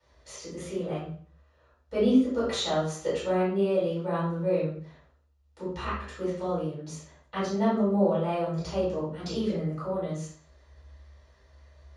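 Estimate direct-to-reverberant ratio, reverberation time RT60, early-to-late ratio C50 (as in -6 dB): -13.0 dB, 0.50 s, 1.5 dB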